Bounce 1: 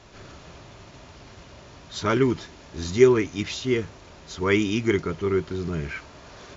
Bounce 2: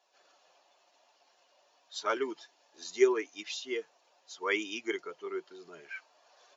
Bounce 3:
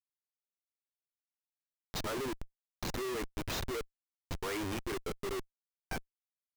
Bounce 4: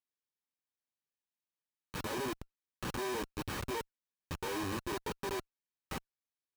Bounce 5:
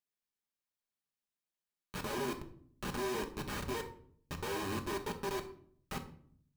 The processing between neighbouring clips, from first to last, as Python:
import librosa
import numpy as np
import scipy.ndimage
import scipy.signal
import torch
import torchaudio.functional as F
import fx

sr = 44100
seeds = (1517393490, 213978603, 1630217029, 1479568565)

y1 = fx.bin_expand(x, sr, power=1.5)
y1 = scipy.signal.sosfilt(scipy.signal.butter(4, 400.0, 'highpass', fs=sr, output='sos'), y1)
y1 = y1 * librosa.db_to_amplitude(-4.0)
y2 = fx.dynamic_eq(y1, sr, hz=2800.0, q=2.3, threshold_db=-52.0, ratio=4.0, max_db=-6)
y2 = fx.schmitt(y2, sr, flips_db=-39.5)
y2 = y2 * librosa.db_to_amplitude(1.0)
y3 = np.r_[np.sort(y2[:len(y2) // 32 * 32].reshape(-1, 32), axis=1).ravel(), y2[len(y2) // 32 * 32:]]
y3 = fx.notch_comb(y3, sr, f0_hz=690.0)
y3 = y3 * librosa.db_to_amplitude(1.0)
y4 = fx.room_shoebox(y3, sr, seeds[0], volume_m3=880.0, walls='furnished', distance_m=1.3)
y4 = y4 * librosa.db_to_amplitude(-1.5)